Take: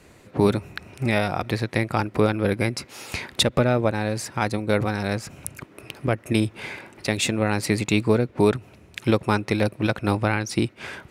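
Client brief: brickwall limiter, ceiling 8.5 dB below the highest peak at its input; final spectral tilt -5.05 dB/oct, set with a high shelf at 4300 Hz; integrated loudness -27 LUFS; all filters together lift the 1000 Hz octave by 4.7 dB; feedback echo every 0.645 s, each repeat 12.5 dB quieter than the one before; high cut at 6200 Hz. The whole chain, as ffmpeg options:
-af "lowpass=6.2k,equalizer=f=1k:t=o:g=6.5,highshelf=f=4.3k:g=-4.5,alimiter=limit=-12dB:level=0:latency=1,aecho=1:1:645|1290|1935:0.237|0.0569|0.0137"

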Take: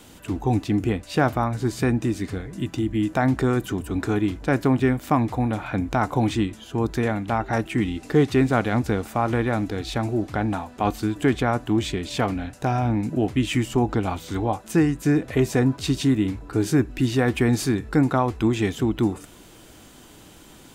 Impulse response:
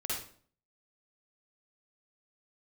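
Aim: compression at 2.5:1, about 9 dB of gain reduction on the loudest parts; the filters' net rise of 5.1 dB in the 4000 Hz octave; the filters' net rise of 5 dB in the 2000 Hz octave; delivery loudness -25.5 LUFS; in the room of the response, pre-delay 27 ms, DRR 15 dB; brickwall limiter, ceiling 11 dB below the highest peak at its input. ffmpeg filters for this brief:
-filter_complex "[0:a]equalizer=f=2k:t=o:g=5.5,equalizer=f=4k:t=o:g=4.5,acompressor=threshold=-28dB:ratio=2.5,alimiter=limit=-20.5dB:level=0:latency=1,asplit=2[a][b];[1:a]atrim=start_sample=2205,adelay=27[c];[b][c]afir=irnorm=-1:irlink=0,volume=-18.5dB[d];[a][d]amix=inputs=2:normalize=0,volume=5.5dB"

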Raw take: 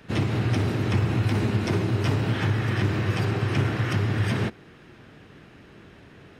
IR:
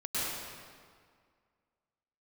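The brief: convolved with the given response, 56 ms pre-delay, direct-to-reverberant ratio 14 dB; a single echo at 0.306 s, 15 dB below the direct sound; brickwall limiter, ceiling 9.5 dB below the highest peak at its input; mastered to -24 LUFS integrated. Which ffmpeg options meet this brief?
-filter_complex "[0:a]alimiter=limit=-21dB:level=0:latency=1,aecho=1:1:306:0.178,asplit=2[a][b];[1:a]atrim=start_sample=2205,adelay=56[c];[b][c]afir=irnorm=-1:irlink=0,volume=-21.5dB[d];[a][d]amix=inputs=2:normalize=0,volume=5dB"

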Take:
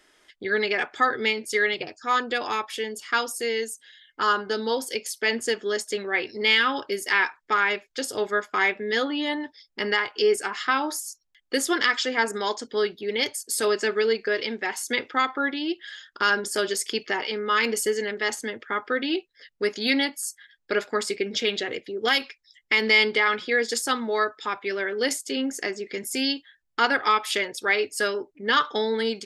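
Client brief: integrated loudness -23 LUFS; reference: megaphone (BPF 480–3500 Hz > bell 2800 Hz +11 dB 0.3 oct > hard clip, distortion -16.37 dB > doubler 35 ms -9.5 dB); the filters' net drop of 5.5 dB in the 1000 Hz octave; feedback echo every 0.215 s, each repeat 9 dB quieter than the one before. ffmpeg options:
-filter_complex "[0:a]highpass=480,lowpass=3.5k,equalizer=f=1k:t=o:g=-7.5,equalizer=f=2.8k:t=o:w=0.3:g=11,aecho=1:1:215|430|645|860:0.355|0.124|0.0435|0.0152,asoftclip=type=hard:threshold=-16dB,asplit=2[a][b];[b]adelay=35,volume=-9.5dB[c];[a][c]amix=inputs=2:normalize=0,volume=2.5dB"

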